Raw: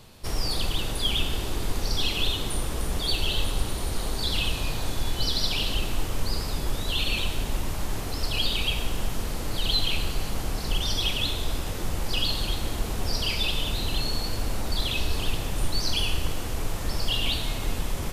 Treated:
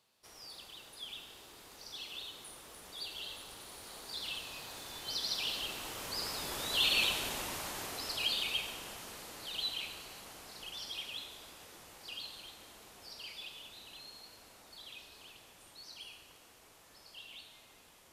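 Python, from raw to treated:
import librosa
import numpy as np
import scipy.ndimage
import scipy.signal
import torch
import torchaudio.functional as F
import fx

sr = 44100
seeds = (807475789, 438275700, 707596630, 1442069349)

y = fx.doppler_pass(x, sr, speed_mps=8, closest_m=6.2, pass_at_s=7.05)
y = fx.highpass(y, sr, hz=770.0, slope=6)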